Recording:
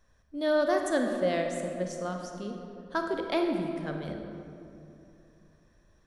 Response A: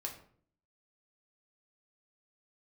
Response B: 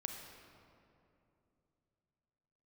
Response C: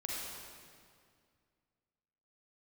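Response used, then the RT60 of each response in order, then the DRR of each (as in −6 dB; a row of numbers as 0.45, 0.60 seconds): B; 0.55, 2.8, 2.1 seconds; −0.5, 3.0, −4.5 decibels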